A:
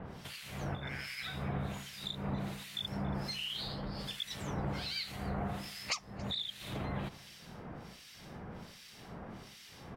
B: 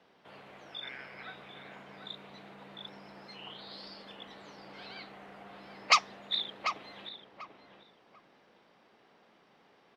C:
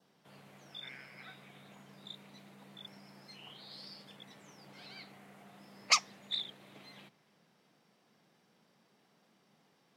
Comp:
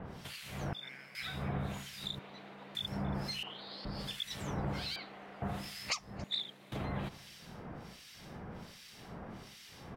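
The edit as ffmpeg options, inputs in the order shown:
-filter_complex "[2:a]asplit=2[a][b];[1:a]asplit=3[c][d][e];[0:a]asplit=6[f][g][h][i][j][k];[f]atrim=end=0.732[l];[a]atrim=start=0.728:end=1.152[m];[g]atrim=start=1.148:end=2.192[n];[c]atrim=start=2.188:end=2.752[o];[h]atrim=start=2.748:end=3.432[p];[d]atrim=start=3.428:end=3.852[q];[i]atrim=start=3.848:end=4.962[r];[e]atrim=start=4.958:end=5.422[s];[j]atrim=start=5.418:end=6.242[t];[b]atrim=start=6.238:end=6.722[u];[k]atrim=start=6.718[v];[l][m]acrossfade=d=0.004:c1=hsin:c2=hsin[w];[w][n]acrossfade=d=0.004:c1=hsin:c2=hsin[x];[x][o]acrossfade=d=0.004:c1=hsin:c2=hsin[y];[y][p]acrossfade=d=0.004:c1=hsin:c2=hsin[z];[z][q]acrossfade=d=0.004:c1=hsin:c2=hsin[aa];[aa][r]acrossfade=d=0.004:c1=hsin:c2=hsin[ab];[ab][s]acrossfade=d=0.004:c1=hsin:c2=hsin[ac];[ac][t]acrossfade=d=0.004:c1=hsin:c2=hsin[ad];[ad][u]acrossfade=d=0.004:c1=hsin:c2=hsin[ae];[ae][v]acrossfade=d=0.004:c1=hsin:c2=hsin"

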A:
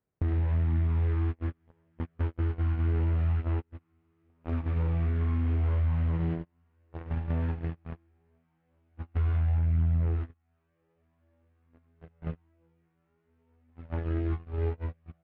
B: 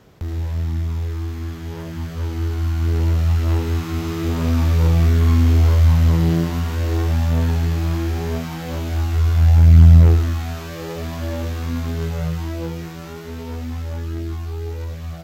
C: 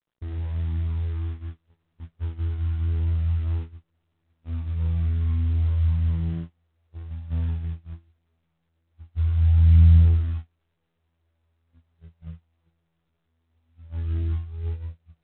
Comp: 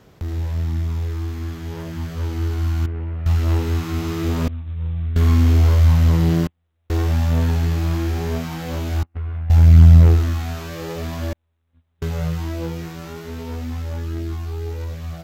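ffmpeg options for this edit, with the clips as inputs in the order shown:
-filter_complex "[0:a]asplit=2[a][b];[2:a]asplit=3[c][d][e];[1:a]asplit=6[f][g][h][i][j][k];[f]atrim=end=2.862[l];[a]atrim=start=2.858:end=3.262[m];[g]atrim=start=3.258:end=4.482[n];[c]atrim=start=4.478:end=5.162[o];[h]atrim=start=5.158:end=6.472[p];[d]atrim=start=6.468:end=6.902[q];[i]atrim=start=6.898:end=9.032[r];[b]atrim=start=9.028:end=9.502[s];[j]atrim=start=9.498:end=11.332[t];[e]atrim=start=11.328:end=12.022[u];[k]atrim=start=12.018[v];[l][m]acrossfade=d=0.004:c1=hsin:c2=hsin[w];[w][n]acrossfade=d=0.004:c1=hsin:c2=hsin[x];[x][o]acrossfade=d=0.004:c1=hsin:c2=hsin[y];[y][p]acrossfade=d=0.004:c1=hsin:c2=hsin[z];[z][q]acrossfade=d=0.004:c1=hsin:c2=hsin[aa];[aa][r]acrossfade=d=0.004:c1=hsin:c2=hsin[ab];[ab][s]acrossfade=d=0.004:c1=hsin:c2=hsin[ac];[ac][t]acrossfade=d=0.004:c1=hsin:c2=hsin[ad];[ad][u]acrossfade=d=0.004:c1=hsin:c2=hsin[ae];[ae][v]acrossfade=d=0.004:c1=hsin:c2=hsin"

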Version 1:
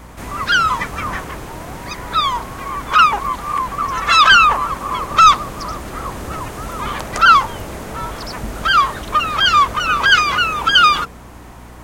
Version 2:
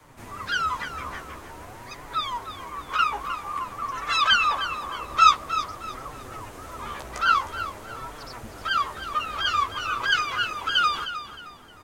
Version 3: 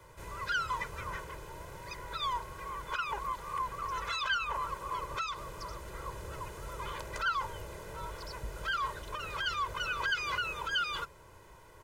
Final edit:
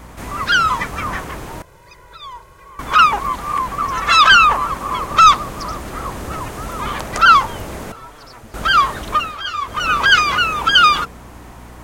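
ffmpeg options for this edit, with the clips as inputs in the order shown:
-filter_complex "[1:a]asplit=2[a][b];[0:a]asplit=4[c][d][e][f];[c]atrim=end=1.622[g];[2:a]atrim=start=1.618:end=2.792[h];[d]atrim=start=2.788:end=7.922[i];[a]atrim=start=7.918:end=8.542[j];[e]atrim=start=8.538:end=9.37[k];[b]atrim=start=9.13:end=9.85[l];[f]atrim=start=9.61[m];[g][h]acrossfade=d=0.004:c1=hsin:c2=hsin[n];[n][i]acrossfade=d=0.004:c1=hsin:c2=hsin[o];[o][j]acrossfade=d=0.004:c1=hsin:c2=hsin[p];[p][k]acrossfade=d=0.004:c1=hsin:c2=hsin[q];[q][l]acrossfade=d=0.24:c1=tri:c2=tri[r];[r][m]acrossfade=d=0.24:c1=tri:c2=tri"

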